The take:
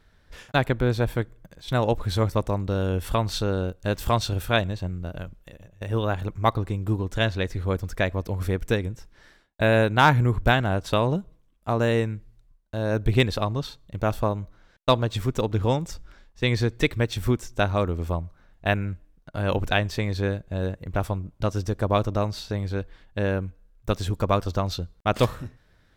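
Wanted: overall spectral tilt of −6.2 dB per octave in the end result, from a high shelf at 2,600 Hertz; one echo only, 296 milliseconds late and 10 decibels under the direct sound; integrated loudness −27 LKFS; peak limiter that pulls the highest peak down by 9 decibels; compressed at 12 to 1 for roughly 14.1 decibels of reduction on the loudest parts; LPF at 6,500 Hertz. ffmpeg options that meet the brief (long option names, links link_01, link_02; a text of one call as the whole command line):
ffmpeg -i in.wav -af "lowpass=6500,highshelf=frequency=2600:gain=-5.5,acompressor=threshold=-28dB:ratio=12,alimiter=level_in=0.5dB:limit=-24dB:level=0:latency=1,volume=-0.5dB,aecho=1:1:296:0.316,volume=10.5dB" out.wav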